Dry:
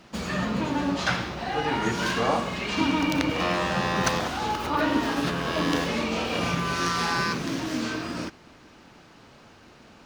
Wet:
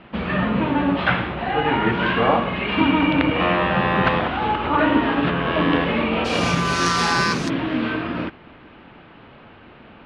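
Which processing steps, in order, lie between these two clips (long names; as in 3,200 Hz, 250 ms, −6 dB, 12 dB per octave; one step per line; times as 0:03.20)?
Butterworth low-pass 3,200 Hz 36 dB per octave, from 0:06.24 11,000 Hz, from 0:07.48 3,300 Hz
level +6.5 dB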